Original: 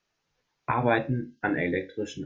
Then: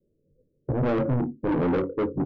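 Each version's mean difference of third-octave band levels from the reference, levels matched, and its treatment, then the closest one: 7.5 dB: steep low-pass 560 Hz 96 dB/oct; in parallel at -1 dB: limiter -25.5 dBFS, peak gain reduction 10 dB; on the sum: soft clip -30 dBFS, distortion -7 dB; doubler 22 ms -13.5 dB; gain +9 dB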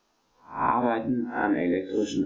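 6.0 dB: spectral swells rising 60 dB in 0.36 s; compressor 5:1, threshold -32 dBFS, peak gain reduction 14 dB; graphic EQ 125/250/1000/2000 Hz -11/+9/+7/-7 dB; gain +6.5 dB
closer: second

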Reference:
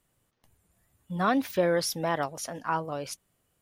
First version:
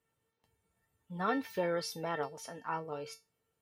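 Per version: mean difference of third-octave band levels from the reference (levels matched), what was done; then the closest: 2.5 dB: HPF 72 Hz; high shelf 4900 Hz -9 dB; resonator 450 Hz, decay 0.23 s, harmonics all, mix 90%; gain +8.5 dB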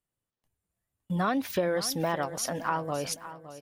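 4.5 dB: gate -59 dBFS, range -22 dB; compressor 3:1, threshold -33 dBFS, peak gain reduction 10 dB; on a send: feedback echo 0.563 s, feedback 35%, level -14 dB; on the sum: gain +6 dB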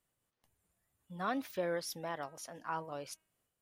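1.5 dB: low shelf 290 Hz -5 dB; de-hum 317.7 Hz, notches 9; noise-modulated level, depth 55%; gain -6.5 dB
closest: third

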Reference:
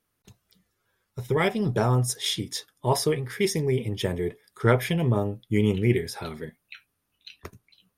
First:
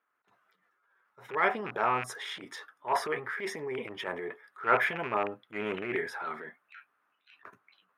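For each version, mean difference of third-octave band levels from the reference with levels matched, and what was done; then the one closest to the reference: 9.0 dB: rattling part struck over -23 dBFS, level -22 dBFS; EQ curve 510 Hz 0 dB, 1400 Hz +13 dB, 4600 Hz -14 dB, 11000 Hz -18 dB; transient shaper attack -11 dB, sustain +6 dB; HPF 400 Hz 12 dB/oct; gain -4.5 dB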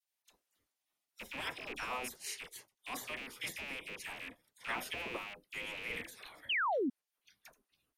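13.0 dB: rattling part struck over -31 dBFS, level -23 dBFS; spectral gate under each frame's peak -15 dB weak; dispersion lows, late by 41 ms, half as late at 1400 Hz; painted sound fall, 6.49–6.9, 230–3300 Hz -25 dBFS; gain -7.5 dB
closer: first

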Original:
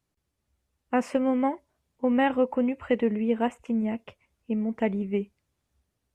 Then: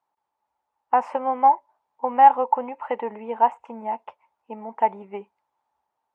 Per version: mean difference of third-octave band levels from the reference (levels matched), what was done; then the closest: 6.5 dB: resonant high-pass 880 Hz, resonance Q 8.9; tilt -4.5 dB/oct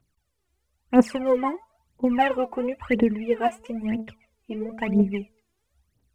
3.5 dB: de-hum 221.4 Hz, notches 6; phaser 1 Hz, delay 3 ms, feedback 79%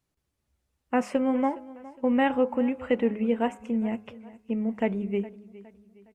1.5 dB: de-hum 104.5 Hz, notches 16; on a send: feedback echo 0.413 s, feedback 41%, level -19 dB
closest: third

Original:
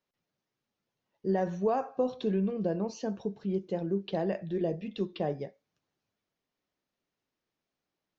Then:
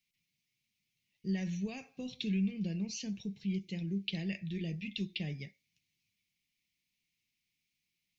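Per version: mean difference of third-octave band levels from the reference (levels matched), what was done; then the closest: 8.0 dB: EQ curve 180 Hz 0 dB, 540 Hz -22 dB, 1400 Hz -24 dB, 2200 Hz +11 dB, 3200 Hz +6 dB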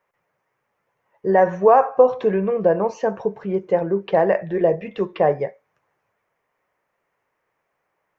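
4.5 dB: graphic EQ 125/250/500/1000/2000/4000 Hz +4/-6/+9/+11/+12/-11 dB; gain +5.5 dB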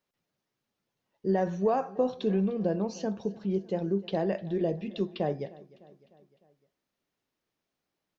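1.0 dB: feedback echo 0.303 s, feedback 56%, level -21 dB; gain +2 dB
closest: third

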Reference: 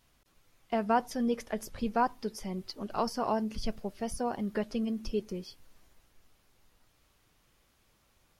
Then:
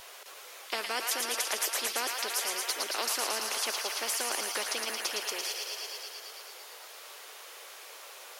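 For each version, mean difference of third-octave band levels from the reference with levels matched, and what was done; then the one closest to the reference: 19.5 dB: steep high-pass 410 Hz 48 dB/oct; on a send: thin delay 0.112 s, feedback 75%, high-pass 1600 Hz, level -8 dB; on the sum: spectral compressor 4:1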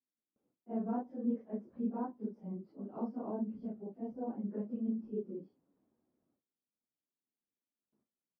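11.5 dB: phase scrambler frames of 0.1 s; gate with hold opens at -55 dBFS; ladder band-pass 290 Hz, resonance 40%; gain +5 dB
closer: second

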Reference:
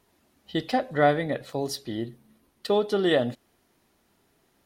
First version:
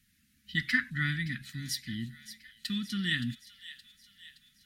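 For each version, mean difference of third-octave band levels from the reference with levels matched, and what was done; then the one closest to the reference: 12.0 dB: spectral gain 0.57–0.9, 800–2300 Hz +12 dB; elliptic band-stop 220–1700 Hz, stop band 50 dB; thin delay 0.57 s, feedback 54%, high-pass 2300 Hz, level -12.5 dB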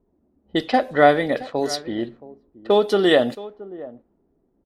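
3.0 dB: bell 120 Hz -10.5 dB 1 oct; echo 0.673 s -18 dB; low-pass opened by the level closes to 340 Hz, open at -24.5 dBFS; gain +7 dB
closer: second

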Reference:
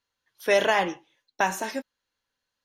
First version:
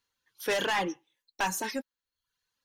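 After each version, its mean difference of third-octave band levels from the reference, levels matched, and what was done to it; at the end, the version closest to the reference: 4.5 dB: reverb removal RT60 0.62 s; high shelf 5400 Hz +4.5 dB; soft clip -21 dBFS, distortion -10 dB; bell 650 Hz -10 dB 0.24 oct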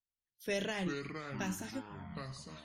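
7.0 dB: passive tone stack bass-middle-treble 10-0-1; spectral noise reduction 14 dB; echoes that change speed 0.184 s, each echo -6 st, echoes 3, each echo -6 dB; bell 180 Hz +4.5 dB 0.35 oct; gain +11 dB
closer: first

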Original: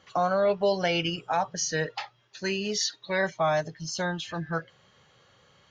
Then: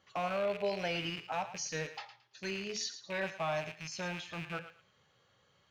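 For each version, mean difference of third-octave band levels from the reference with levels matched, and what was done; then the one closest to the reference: 5.0 dB: rattling part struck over -42 dBFS, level -23 dBFS; flange 1.3 Hz, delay 8.7 ms, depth 3.3 ms, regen -78%; thinning echo 0.111 s, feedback 24%, high-pass 800 Hz, level -11 dB; gain -5.5 dB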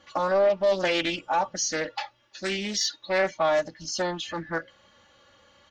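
3.0 dB: comb 3.5 ms, depth 86%; soft clip -13.5 dBFS, distortion -21 dB; Doppler distortion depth 0.25 ms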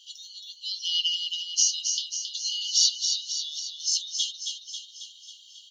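18.0 dB: in parallel at +2 dB: compressor, threshold -37 dBFS, peak gain reduction 15.5 dB; on the sum: brick-wall FIR high-pass 2800 Hz; feedback echo 0.271 s, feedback 59%, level -6 dB; gain +5.5 dB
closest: second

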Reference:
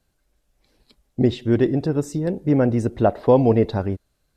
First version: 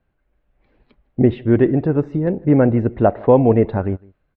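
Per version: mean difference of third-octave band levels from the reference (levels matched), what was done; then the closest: 2.5 dB: LPF 2500 Hz 24 dB/oct; AGC gain up to 4 dB; outdoor echo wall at 27 m, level -25 dB; gain +1 dB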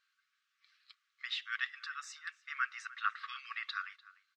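23.0 dB: brick-wall FIR high-pass 1100 Hz; air absorption 170 m; outdoor echo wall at 51 m, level -19 dB; gain +3 dB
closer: first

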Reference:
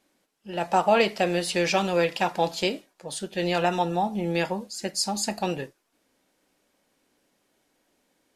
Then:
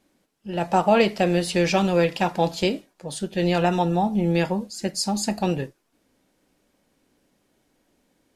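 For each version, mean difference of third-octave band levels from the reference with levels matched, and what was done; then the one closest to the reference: 3.0 dB: low shelf 280 Hz +11 dB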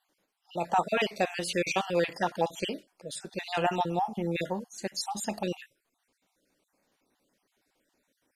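4.5 dB: random spectral dropouts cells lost 42%; gain -3 dB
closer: first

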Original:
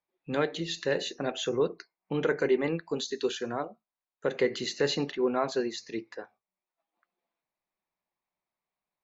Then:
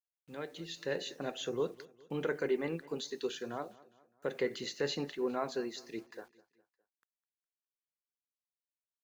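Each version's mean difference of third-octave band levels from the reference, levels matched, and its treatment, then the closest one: 4.0 dB: opening faded in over 0.96 s; bit-crush 10-bit; on a send: feedback echo 0.205 s, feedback 48%, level -21 dB; on the sum: gain -7 dB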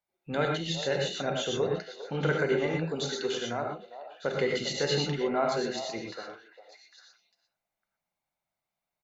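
7.0 dB: comb 1.4 ms, depth 39%; delay with a stepping band-pass 0.401 s, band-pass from 660 Hz, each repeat 1.4 oct, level -9.5 dB; non-linear reverb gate 0.14 s rising, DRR 1 dB; gain -1.5 dB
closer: first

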